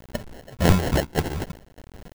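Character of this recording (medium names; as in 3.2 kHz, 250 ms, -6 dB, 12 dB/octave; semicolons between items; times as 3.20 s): phasing stages 6, 2.1 Hz, lowest notch 260–1700 Hz; a quantiser's noise floor 8-bit, dither none; chopped level 1.7 Hz, depth 60%, duty 70%; aliases and images of a low sample rate 1.2 kHz, jitter 0%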